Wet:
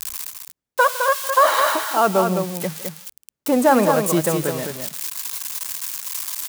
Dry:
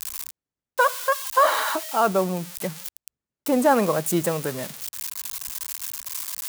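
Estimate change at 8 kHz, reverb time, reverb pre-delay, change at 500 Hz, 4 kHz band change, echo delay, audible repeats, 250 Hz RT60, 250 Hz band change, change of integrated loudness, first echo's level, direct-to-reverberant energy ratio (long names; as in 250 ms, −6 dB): +4.0 dB, no reverb audible, no reverb audible, +4.0 dB, +4.0 dB, 157 ms, 2, no reverb audible, +4.0 dB, +4.0 dB, −19.0 dB, no reverb audible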